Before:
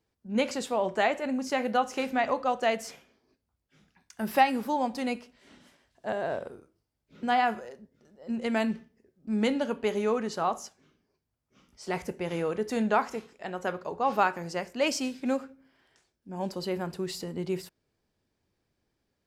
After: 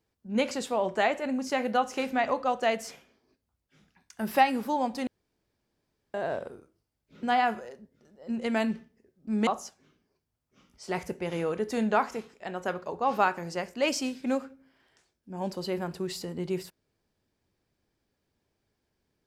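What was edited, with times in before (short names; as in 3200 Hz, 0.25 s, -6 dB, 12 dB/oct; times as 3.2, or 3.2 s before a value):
5.07–6.14 room tone
9.47–10.46 cut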